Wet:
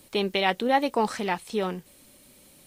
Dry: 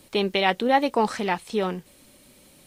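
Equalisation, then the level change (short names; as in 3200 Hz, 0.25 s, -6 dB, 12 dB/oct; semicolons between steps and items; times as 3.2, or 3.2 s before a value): high shelf 9000 Hz +6 dB; -2.5 dB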